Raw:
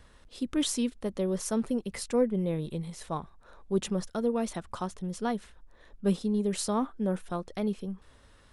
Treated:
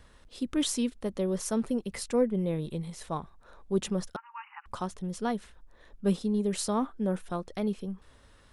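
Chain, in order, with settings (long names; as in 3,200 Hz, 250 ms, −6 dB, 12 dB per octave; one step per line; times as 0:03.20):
0:04.16–0:04.66: linear-phase brick-wall band-pass 780–3,000 Hz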